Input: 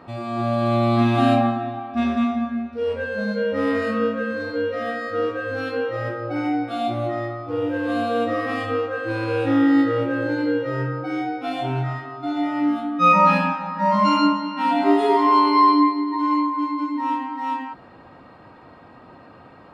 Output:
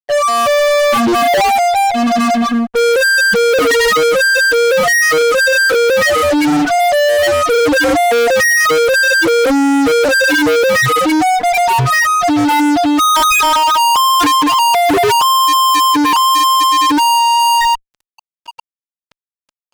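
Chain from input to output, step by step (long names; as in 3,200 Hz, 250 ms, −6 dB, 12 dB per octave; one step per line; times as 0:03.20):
high-pass filter 870 Hz 6 dB per octave
spectral peaks only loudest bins 2
comb filter 2.1 ms, depth 64%
fuzz pedal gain 50 dB, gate −53 dBFS
level +3 dB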